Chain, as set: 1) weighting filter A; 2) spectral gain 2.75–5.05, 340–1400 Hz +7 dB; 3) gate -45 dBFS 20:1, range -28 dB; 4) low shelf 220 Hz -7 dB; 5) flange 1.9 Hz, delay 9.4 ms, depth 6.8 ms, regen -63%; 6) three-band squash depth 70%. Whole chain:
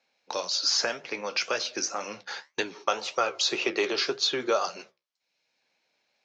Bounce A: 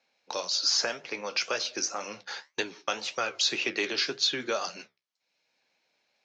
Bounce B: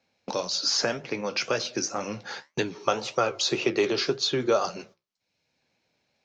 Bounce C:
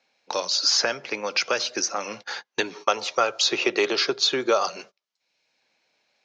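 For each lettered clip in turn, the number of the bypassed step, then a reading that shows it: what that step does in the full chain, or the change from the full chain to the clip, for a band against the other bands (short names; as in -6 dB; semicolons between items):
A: 2, 500 Hz band -4.5 dB; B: 1, 125 Hz band +14.5 dB; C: 5, loudness change +4.5 LU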